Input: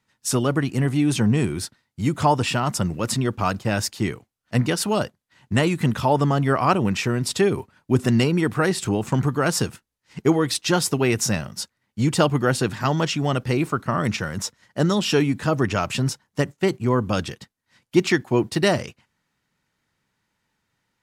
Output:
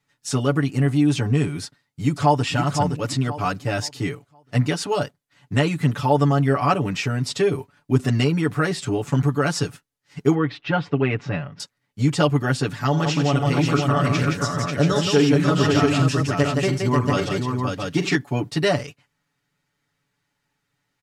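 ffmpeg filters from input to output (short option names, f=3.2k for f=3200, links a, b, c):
-filter_complex "[0:a]asplit=2[a][b];[b]afade=t=in:st=1.64:d=0.01,afade=t=out:st=2.43:d=0.01,aecho=0:1:520|1040|1560|2080:0.501187|0.150356|0.0451069|0.0135321[c];[a][c]amix=inputs=2:normalize=0,asettb=1/sr,asplit=3[d][e][f];[d]atrim=end=10.344[g];[e]atrim=start=10.34:end=11.6,asetpts=PTS-STARTPTS,afade=t=in:d=0.004:c=qsin,afade=t=out:st=1.256:d=0.004:c=qsin,lowpass=f=2.9k:w=0.5412,lowpass=f=2.9k:w=1.3066[h];[f]atrim=start=11.596[i];[g][h]acrossfade=d=0.004:c1=hsin:c2=qsin[j];[j][i]acrossfade=d=0.004:c1=qsin:c2=hsin,asettb=1/sr,asplit=3[k][l][m];[k]atrim=end=12.884[n];[l]atrim=start=12.88:end=18.15,asetpts=PTS-STARTPTS,afade=t=in:d=0.004:c=qsin,afade=t=out:st=5.266:d=0.004:c=qsin,aecho=1:1:45|87|170|541|684:0.266|0.224|0.596|0.596|0.596,atrim=end_sample=232407[o];[m]atrim=start=18.146[p];[n][o]acrossfade=d=0.004:c1=hsin:c2=qsin[q];[q][p]acrossfade=d=0.004:c1=qsin:c2=hsin,bandreject=f=980:w=22,acrossover=split=8000[r][s];[s]acompressor=threshold=-49dB:ratio=4:attack=1:release=60[t];[r][t]amix=inputs=2:normalize=0,aecho=1:1:7:0.98,volume=-3.5dB"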